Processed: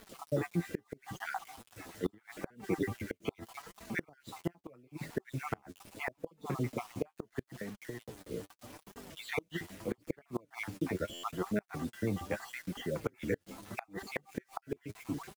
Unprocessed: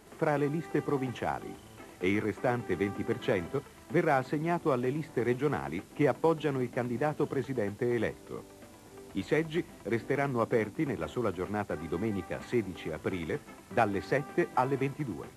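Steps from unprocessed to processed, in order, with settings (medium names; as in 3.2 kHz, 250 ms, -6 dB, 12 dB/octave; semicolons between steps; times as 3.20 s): random holes in the spectrogram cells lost 52%; band-stop 390 Hz, Q 12; 7.40–8.26 s: compression 8:1, threshold -40 dBFS, peak gain reduction 14 dB; bit crusher 9-bit; flange 0.78 Hz, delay 4.2 ms, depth 7.6 ms, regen +23%; inverted gate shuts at -26 dBFS, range -31 dB; buffer glitch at 11.13 s, samples 512, times 8; trim +5.5 dB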